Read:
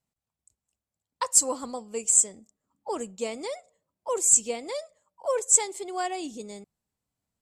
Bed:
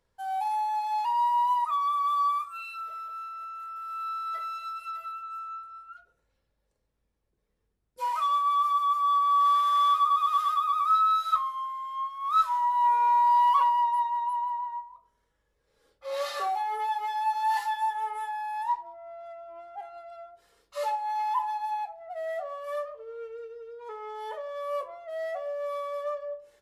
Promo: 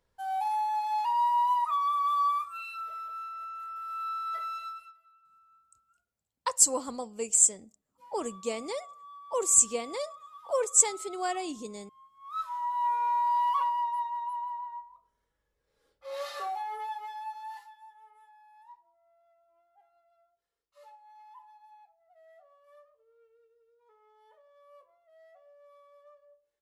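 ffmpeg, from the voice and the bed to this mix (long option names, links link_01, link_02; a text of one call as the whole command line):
ffmpeg -i stem1.wav -i stem2.wav -filter_complex "[0:a]adelay=5250,volume=-1.5dB[link_01];[1:a]volume=18dB,afade=type=out:start_time=4.6:duration=0.34:silence=0.0668344,afade=type=in:start_time=12.13:duration=0.6:silence=0.112202,afade=type=out:start_time=16.66:duration=1.07:silence=0.112202[link_02];[link_01][link_02]amix=inputs=2:normalize=0" out.wav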